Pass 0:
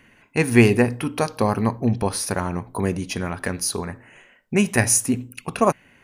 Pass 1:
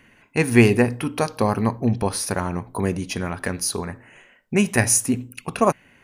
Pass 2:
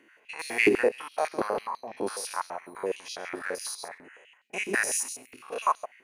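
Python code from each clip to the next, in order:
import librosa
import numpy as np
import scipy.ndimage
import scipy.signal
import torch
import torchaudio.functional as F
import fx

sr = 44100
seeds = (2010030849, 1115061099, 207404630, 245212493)

y1 = x
y2 = fx.spec_steps(y1, sr, hold_ms=100)
y2 = y2 + 10.0 ** (-11.5 / 20.0) * np.pad(y2, (int(134 * sr / 1000.0), 0))[:len(y2)]
y2 = fx.filter_held_highpass(y2, sr, hz=12.0, low_hz=340.0, high_hz=4100.0)
y2 = y2 * librosa.db_to_amplitude(-7.0)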